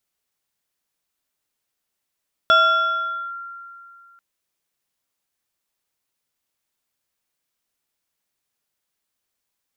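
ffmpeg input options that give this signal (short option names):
-f lavfi -i "aevalsrc='0.335*pow(10,-3*t/2.53)*sin(2*PI*1380*t+0.72*clip(1-t/0.83,0,1)*sin(2*PI*1.47*1380*t))':d=1.69:s=44100"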